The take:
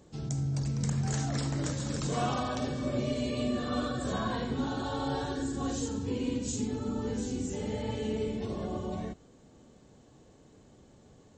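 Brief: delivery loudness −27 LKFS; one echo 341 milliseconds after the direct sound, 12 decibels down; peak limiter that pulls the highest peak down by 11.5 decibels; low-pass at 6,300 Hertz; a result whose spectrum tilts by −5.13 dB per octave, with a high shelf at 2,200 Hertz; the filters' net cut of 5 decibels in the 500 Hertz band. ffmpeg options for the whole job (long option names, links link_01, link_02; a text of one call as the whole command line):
ffmpeg -i in.wav -af "lowpass=6300,equalizer=frequency=500:width_type=o:gain=-6.5,highshelf=frequency=2200:gain=5.5,alimiter=level_in=4dB:limit=-24dB:level=0:latency=1,volume=-4dB,aecho=1:1:341:0.251,volume=9.5dB" out.wav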